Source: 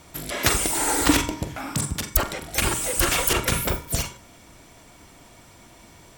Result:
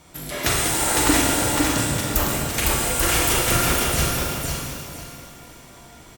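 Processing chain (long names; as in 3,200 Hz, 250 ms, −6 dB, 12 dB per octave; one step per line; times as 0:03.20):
on a send: repeating echo 507 ms, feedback 26%, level −3 dB
on the sum: reverb with rising layers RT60 1.8 s, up +12 semitones, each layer −8 dB, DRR −2 dB
level −3 dB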